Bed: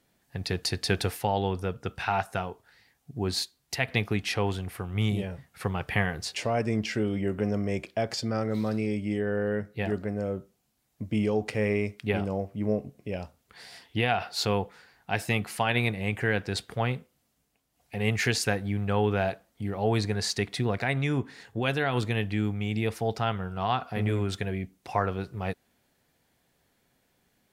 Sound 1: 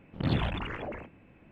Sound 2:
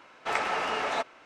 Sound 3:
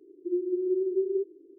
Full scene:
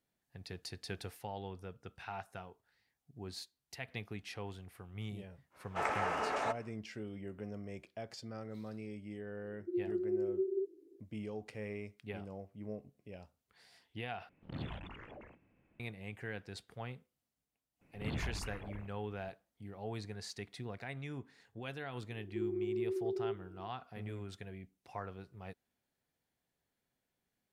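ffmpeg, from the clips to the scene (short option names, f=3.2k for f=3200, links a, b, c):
-filter_complex "[3:a]asplit=2[a][b];[1:a]asplit=2[c][d];[0:a]volume=-16.5dB[e];[2:a]equalizer=f=3.8k:t=o:w=1.5:g=-11[f];[d]asubboost=boost=9:cutoff=120[g];[b]acompressor=threshold=-32dB:ratio=6:attack=3.2:release=140:knee=1:detection=peak[h];[e]asplit=2[i][j];[i]atrim=end=14.294[k];[c]atrim=end=1.51,asetpts=PTS-STARTPTS,volume=-14.5dB[l];[j]atrim=start=15.796[m];[f]atrim=end=1.25,asetpts=PTS-STARTPTS,volume=-4dB,afade=t=in:d=0.1,afade=t=out:st=1.15:d=0.1,adelay=5500[n];[a]atrim=end=1.58,asetpts=PTS-STARTPTS,volume=-7.5dB,afade=t=in:d=0.004:c=hsin,afade=t=out:st=1.576:d=0.004:c=hsin,adelay=9420[o];[g]atrim=end=1.51,asetpts=PTS-STARTPTS,volume=-12dB,afade=t=in:d=0.004:c=hsin,afade=t=out:st=1.506:d=0.004:c=hsin,adelay=17810[p];[h]atrim=end=1.58,asetpts=PTS-STARTPTS,volume=-2dB,afade=t=in:d=0.004:c=hsin,afade=t=out:st=1.576:d=0.004:c=hsin,adelay=22100[q];[k][l]acrossfade=d=0.004:c1=hsin:c2=hsin[r];[r][m]acrossfade=d=0.004:c1=hsin:c2=hsin[s];[s][n][o][p][q]amix=inputs=5:normalize=0"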